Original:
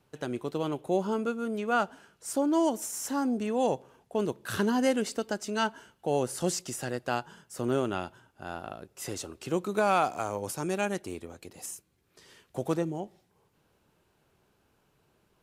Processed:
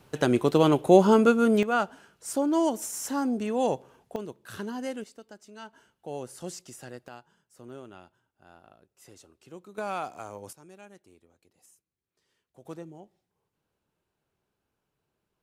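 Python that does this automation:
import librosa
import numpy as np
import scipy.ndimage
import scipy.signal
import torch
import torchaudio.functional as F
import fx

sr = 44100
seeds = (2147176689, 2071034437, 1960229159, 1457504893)

y = fx.gain(x, sr, db=fx.steps((0.0, 11.0), (1.63, 1.0), (4.16, -8.5), (5.04, -16.0), (5.73, -9.0), (7.08, -16.0), (9.78, -8.0), (10.53, -20.0), (12.65, -12.0)))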